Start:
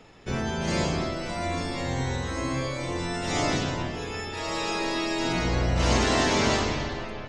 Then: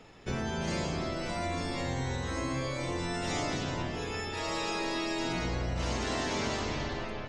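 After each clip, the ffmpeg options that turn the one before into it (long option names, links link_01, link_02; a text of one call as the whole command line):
ffmpeg -i in.wav -af "acompressor=threshold=-27dB:ratio=6,volume=-2dB" out.wav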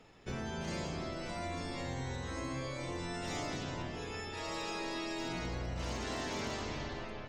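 ffmpeg -i in.wav -af "aeval=exprs='0.0631*(abs(mod(val(0)/0.0631+3,4)-2)-1)':channel_layout=same,volume=-6dB" out.wav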